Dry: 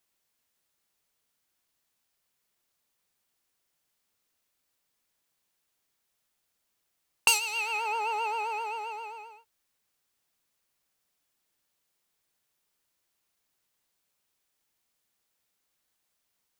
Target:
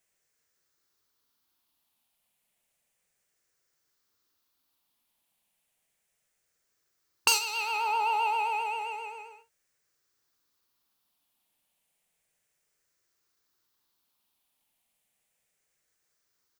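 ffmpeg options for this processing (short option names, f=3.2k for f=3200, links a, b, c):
-filter_complex "[0:a]afftfilt=real='re*pow(10,7/40*sin(2*PI*(0.52*log(max(b,1)*sr/1024/100)/log(2)-(-0.32)*(pts-256)/sr)))':imag='im*pow(10,7/40*sin(2*PI*(0.52*log(max(b,1)*sr/1024/100)/log(2)-(-0.32)*(pts-256)/sr)))':win_size=1024:overlap=0.75,asplit=2[a][b];[b]adelay=46,volume=-10.5dB[c];[a][c]amix=inputs=2:normalize=0"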